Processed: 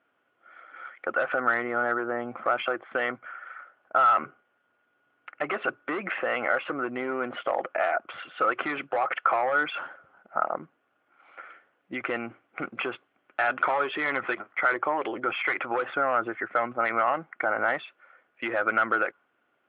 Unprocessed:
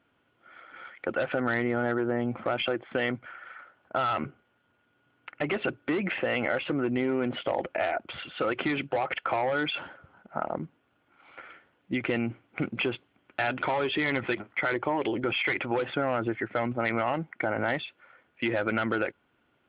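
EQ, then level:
parametric band 930 Hz −7.5 dB 0.31 octaves
dynamic equaliser 1,200 Hz, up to +8 dB, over −48 dBFS, Q 1.5
resonant band-pass 1,000 Hz, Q 0.88
+3.0 dB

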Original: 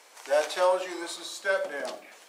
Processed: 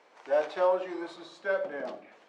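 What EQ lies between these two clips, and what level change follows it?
head-to-tape spacing loss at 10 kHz 29 dB
low-shelf EQ 200 Hz +11 dB
−1.0 dB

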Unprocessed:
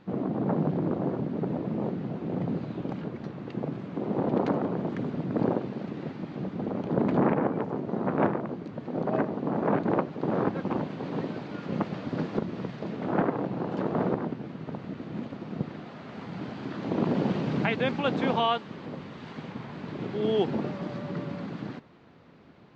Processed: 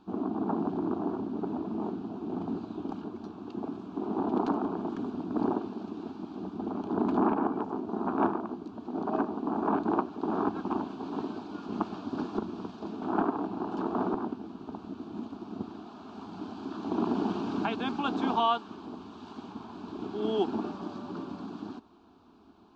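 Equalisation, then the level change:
dynamic equaliser 1,700 Hz, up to +4 dB, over −43 dBFS, Q 0.9
phaser with its sweep stopped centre 530 Hz, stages 6
0.0 dB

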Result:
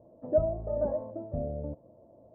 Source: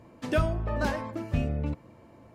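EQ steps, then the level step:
transistor ladder low-pass 670 Hz, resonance 70%
+3.0 dB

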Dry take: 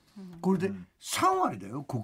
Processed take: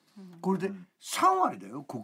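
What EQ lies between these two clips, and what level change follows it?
high-pass filter 160 Hz 24 dB per octave
dynamic equaliser 930 Hz, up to +5 dB, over −38 dBFS, Q 1.2
−2.0 dB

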